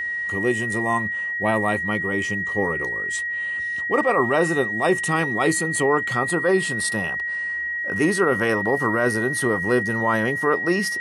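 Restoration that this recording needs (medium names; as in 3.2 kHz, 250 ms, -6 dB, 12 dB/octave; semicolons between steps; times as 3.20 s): de-click; band-stop 1.9 kHz, Q 30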